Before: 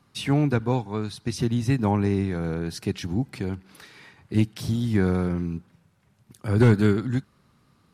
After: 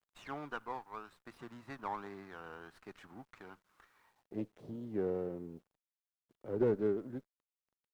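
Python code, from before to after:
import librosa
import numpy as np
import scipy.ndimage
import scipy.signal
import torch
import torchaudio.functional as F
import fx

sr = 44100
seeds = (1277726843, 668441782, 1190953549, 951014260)

y = fx.law_mismatch(x, sr, coded='A')
y = fx.filter_sweep_bandpass(y, sr, from_hz=1200.0, to_hz=480.0, start_s=3.94, end_s=4.46, q=2.5)
y = fx.quant_dither(y, sr, seeds[0], bits=12, dither='none')
y = fx.running_max(y, sr, window=5)
y = y * 10.0 ** (-4.5 / 20.0)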